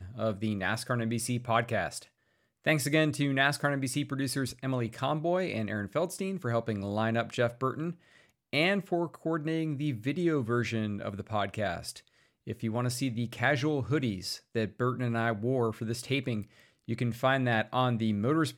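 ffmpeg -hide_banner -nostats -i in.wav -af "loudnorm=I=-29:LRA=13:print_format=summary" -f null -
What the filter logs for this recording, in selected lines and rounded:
Input Integrated:    -30.8 LUFS
Input True Peak:     -11.7 dBTP
Input LRA:             2.2 LU
Input Threshold:     -41.0 LUFS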